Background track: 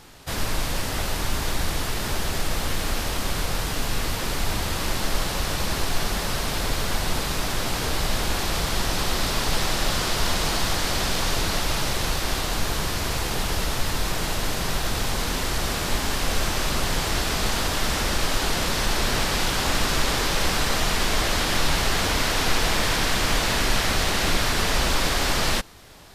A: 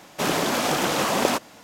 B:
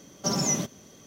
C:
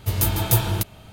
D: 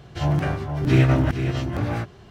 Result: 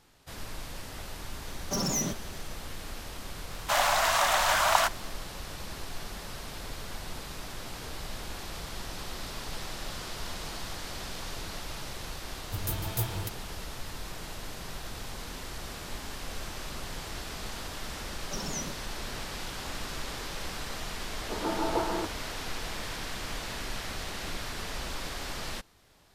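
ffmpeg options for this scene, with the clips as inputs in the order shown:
ffmpeg -i bed.wav -i cue0.wav -i cue1.wav -i cue2.wav -filter_complex "[2:a]asplit=2[link_01][link_02];[3:a]asplit=2[link_03][link_04];[0:a]volume=-14.5dB[link_05];[link_01]asoftclip=type=hard:threshold=-24dB[link_06];[1:a]afreqshift=420[link_07];[link_04]asuperpass=centerf=580:order=8:qfactor=0.52[link_08];[link_06]atrim=end=1.06,asetpts=PTS-STARTPTS,volume=-2dB,afade=type=in:duration=0.004:curve=hsin,afade=type=out:start_time=1.056:duration=0.004:curve=hsin,adelay=1470[link_09];[link_07]atrim=end=1.63,asetpts=PTS-STARTPTS,volume=-2dB,afade=type=in:duration=0.004:curve=hsin,afade=type=out:start_time=1.626:duration=0.004:curve=hsin,adelay=3500[link_10];[link_03]atrim=end=1.12,asetpts=PTS-STARTPTS,volume=-12.5dB,afade=type=in:duration=0.004:curve=hsin,afade=type=out:start_time=1.116:duration=0.004:curve=hsin,adelay=12460[link_11];[link_02]atrim=end=1.06,asetpts=PTS-STARTPTS,volume=-11.5dB,afade=type=in:duration=0.004:curve=hsin,afade=type=out:start_time=1.056:duration=0.004:curve=hsin,adelay=18070[link_12];[link_08]atrim=end=1.12,asetpts=PTS-STARTPTS,afade=type=in:duration=0.004:curve=hsin,afade=type=out:start_time=1.116:duration=0.004:curve=hsin,adelay=21230[link_13];[link_05][link_09][link_10][link_11][link_12][link_13]amix=inputs=6:normalize=0" out.wav

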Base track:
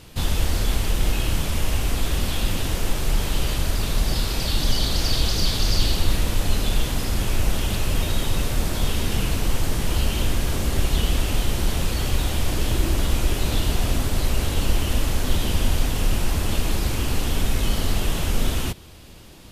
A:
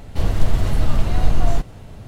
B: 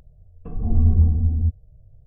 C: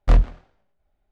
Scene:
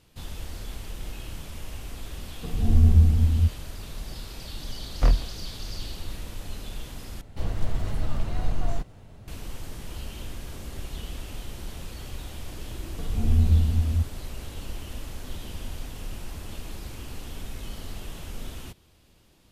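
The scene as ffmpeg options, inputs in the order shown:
ffmpeg -i bed.wav -i cue0.wav -i cue1.wav -i cue2.wav -filter_complex "[2:a]asplit=2[link_01][link_02];[0:a]volume=-15dB,asplit=2[link_03][link_04];[link_03]atrim=end=7.214[link_05];[1:a]atrim=end=2.07,asetpts=PTS-STARTPTS,volume=-9.5dB[link_06];[link_04]atrim=start=9.276[link_07];[link_01]atrim=end=2.06,asetpts=PTS-STARTPTS,volume=-0.5dB,afade=type=in:duration=0.004:curve=hsin,afade=type=out:start_time=2.056:duration=0.004:curve=hsin,adelay=1980[link_08];[3:a]atrim=end=1.11,asetpts=PTS-STARTPTS,volume=-4.5dB,afade=type=in:duration=0.004:curve=hsin,afade=type=out:start_time=1.106:duration=0.004:curve=hsin,adelay=4940[link_09];[link_02]atrim=end=2.06,asetpts=PTS-STARTPTS,volume=-3.5dB,afade=type=in:duration=0.004:curve=hsin,afade=type=out:start_time=2.056:duration=0.004:curve=hsin,adelay=12530[link_10];[link_05][link_06]acrossfade=duration=0.004:curve1=hsin:curve2=hsin[link_11];[link_11][link_07]acrossfade=duration=0.004:curve1=hsin:curve2=hsin[link_12];[link_12][link_08][link_09][link_10]amix=inputs=4:normalize=0" out.wav

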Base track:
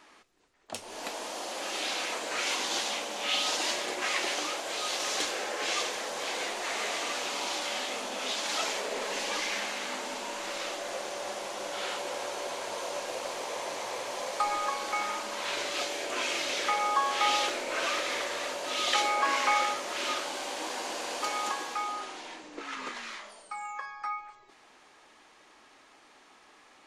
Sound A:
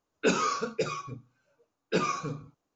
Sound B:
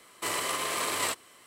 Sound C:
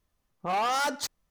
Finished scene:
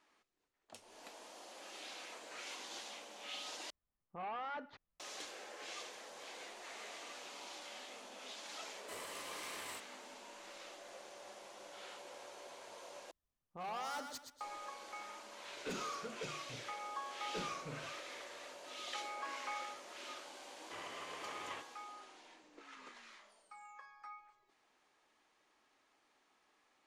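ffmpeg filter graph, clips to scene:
ffmpeg -i bed.wav -i cue0.wav -i cue1.wav -i cue2.wav -filter_complex "[3:a]asplit=2[link_01][link_02];[2:a]asplit=2[link_03][link_04];[0:a]volume=-17dB[link_05];[link_01]lowpass=frequency=2800:width=0.5412,lowpass=frequency=2800:width=1.3066[link_06];[link_03]asoftclip=type=tanh:threshold=-23.5dB[link_07];[link_02]aecho=1:1:122|244|366|488:0.447|0.143|0.0457|0.0146[link_08];[1:a]asoftclip=type=tanh:threshold=-26.5dB[link_09];[link_04]aresample=8000,aresample=44100[link_10];[link_05]asplit=3[link_11][link_12][link_13];[link_11]atrim=end=3.704[link_14];[link_06]atrim=end=1.3,asetpts=PTS-STARTPTS,volume=-15.5dB[link_15];[link_12]atrim=start=4.996:end=13.114[link_16];[link_08]atrim=end=1.3,asetpts=PTS-STARTPTS,volume=-16dB[link_17];[link_13]atrim=start=14.406[link_18];[link_07]atrim=end=1.46,asetpts=PTS-STARTPTS,volume=-17dB,afade=type=in:duration=0.004:curve=hsin,afade=type=out:start_time=1.456:duration=0.004:curve=hsin,adelay=381906S[link_19];[link_09]atrim=end=2.75,asetpts=PTS-STARTPTS,volume=-11.5dB,afade=type=in:duration=0.004:curve=hsin,afade=type=out:start_time=2.746:duration=0.004:curve=hsin,adelay=15420[link_20];[link_10]atrim=end=1.46,asetpts=PTS-STARTPTS,volume=-16.5dB,afade=type=in:duration=0.004:curve=hsin,afade=type=out:start_time=1.456:duration=0.004:curve=hsin,adelay=20480[link_21];[link_14][link_15]acrossfade=duration=0.004:curve1=hsin:curve2=hsin[link_22];[link_22][link_16]acrossfade=duration=0.004:curve1=hsin:curve2=hsin[link_23];[link_23][link_17]acrossfade=duration=0.004:curve1=hsin:curve2=hsin[link_24];[link_24][link_18]acrossfade=duration=0.004:curve1=hsin:curve2=hsin[link_25];[link_25][link_19][link_20][link_21]amix=inputs=4:normalize=0" out.wav

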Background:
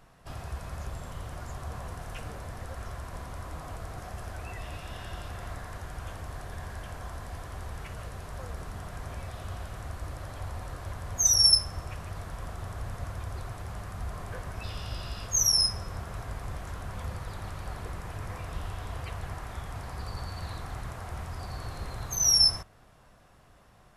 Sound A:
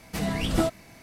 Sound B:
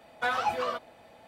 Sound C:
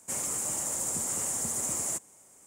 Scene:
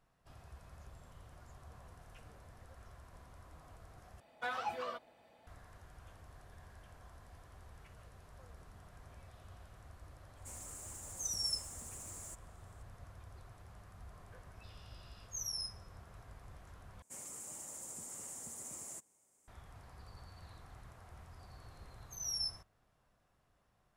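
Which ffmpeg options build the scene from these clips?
ffmpeg -i bed.wav -i cue0.wav -i cue1.wav -i cue2.wav -filter_complex "[3:a]asplit=2[link_01][link_02];[0:a]volume=-17dB[link_03];[link_01]asoftclip=type=hard:threshold=-27.5dB[link_04];[link_03]asplit=3[link_05][link_06][link_07];[link_05]atrim=end=4.204[link_08];[2:a]atrim=end=1.27,asetpts=PTS-STARTPTS,volume=-10.5dB[link_09];[link_06]atrim=start=5.466:end=17.024[link_10];[link_02]atrim=end=2.46,asetpts=PTS-STARTPTS,volume=-16dB[link_11];[link_07]atrim=start=19.476[link_12];[link_04]atrim=end=2.46,asetpts=PTS-STARTPTS,volume=-17dB,afade=type=in:duration=0.004:curve=hsin,afade=type=out:start_time=2.456:duration=0.004:curve=hsin,adelay=10370[link_13];[link_08][link_09]acrossfade=duration=0.004:curve1=hsin:curve2=hsin[link_14];[link_14][link_10]acrossfade=duration=0.004:curve1=hsin:curve2=hsin[link_15];[link_15][link_11]acrossfade=duration=0.004:curve1=hsin:curve2=hsin[link_16];[link_16][link_12]acrossfade=duration=0.004:curve1=hsin:curve2=hsin[link_17];[link_17][link_13]amix=inputs=2:normalize=0" out.wav

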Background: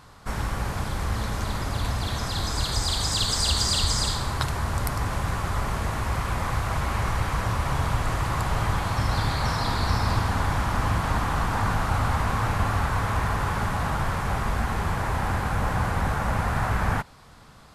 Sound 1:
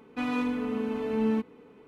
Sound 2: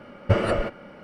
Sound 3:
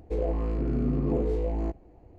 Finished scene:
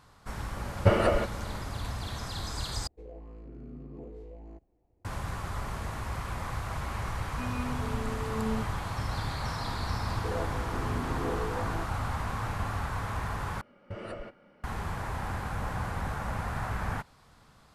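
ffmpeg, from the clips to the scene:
ffmpeg -i bed.wav -i cue0.wav -i cue1.wav -i cue2.wav -filter_complex "[2:a]asplit=2[link_01][link_02];[3:a]asplit=2[link_03][link_04];[0:a]volume=-8.5dB[link_05];[link_01]equalizer=frequency=840:width=1.5:gain=3.5[link_06];[1:a]aecho=1:1:4.8:0.93[link_07];[link_04]highpass=frequency=550:poles=1[link_08];[link_02]alimiter=limit=-14dB:level=0:latency=1:release=111[link_09];[link_05]asplit=3[link_10][link_11][link_12];[link_10]atrim=end=2.874[link_13];[link_03]atrim=end=2.18,asetpts=PTS-STARTPTS,volume=-18dB[link_14];[link_11]atrim=start=5.046:end=13.614[link_15];[link_09]atrim=end=1.03,asetpts=PTS-STARTPTS,volume=-15dB[link_16];[link_12]atrim=start=14.636[link_17];[link_06]atrim=end=1.03,asetpts=PTS-STARTPTS,volume=-2dB,afade=type=in:duration=0.004:curve=hsin,afade=type=out:start_time=1.026:duration=0.004:curve=hsin,adelay=560[link_18];[link_07]atrim=end=1.87,asetpts=PTS-STARTPTS,volume=-12dB,afade=type=in:duration=0.004:curve=hsin,afade=type=out:start_time=1.866:duration=0.004:curve=hsin,adelay=7210[link_19];[link_08]atrim=end=2.18,asetpts=PTS-STARTPTS,volume=-1.5dB,afade=type=in:duration=0.004:curve=hsin,afade=type=out:start_time=2.176:duration=0.004:curve=hsin,adelay=10130[link_20];[link_13][link_14]acrossfade=duration=0.004:curve1=hsin:curve2=hsin[link_21];[link_21][link_15]acrossfade=duration=0.004:curve1=hsin:curve2=hsin[link_22];[link_22][link_16]acrossfade=duration=0.004:curve1=hsin:curve2=hsin[link_23];[link_23][link_17]acrossfade=duration=0.004:curve1=hsin:curve2=hsin[link_24];[link_24][link_18][link_19][link_20]amix=inputs=4:normalize=0" out.wav

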